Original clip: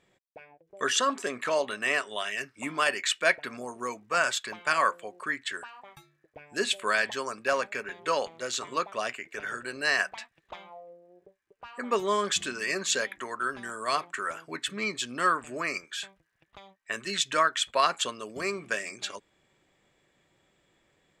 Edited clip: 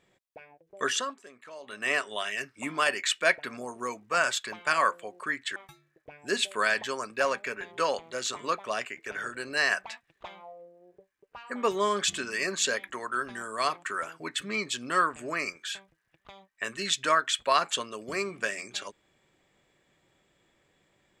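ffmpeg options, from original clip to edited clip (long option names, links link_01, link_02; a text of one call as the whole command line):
ffmpeg -i in.wav -filter_complex "[0:a]asplit=4[link_01][link_02][link_03][link_04];[link_01]atrim=end=1.16,asetpts=PTS-STARTPTS,afade=type=out:start_time=0.85:duration=0.31:silence=0.125893[link_05];[link_02]atrim=start=1.16:end=1.61,asetpts=PTS-STARTPTS,volume=-18dB[link_06];[link_03]atrim=start=1.61:end=5.562,asetpts=PTS-STARTPTS,afade=type=in:duration=0.31:silence=0.125893[link_07];[link_04]atrim=start=5.838[link_08];[link_05][link_06][link_07]concat=n=3:v=0:a=1[link_09];[link_09][link_08]acrossfade=duration=0.004:curve1=hsin:curve2=hsin" out.wav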